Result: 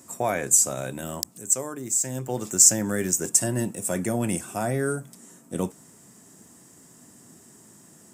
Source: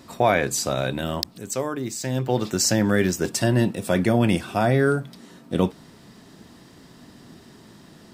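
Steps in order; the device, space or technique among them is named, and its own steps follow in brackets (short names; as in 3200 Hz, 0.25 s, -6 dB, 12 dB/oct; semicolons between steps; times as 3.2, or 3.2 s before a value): budget condenser microphone (HPF 92 Hz; resonant high shelf 5600 Hz +11 dB, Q 3); gain -6.5 dB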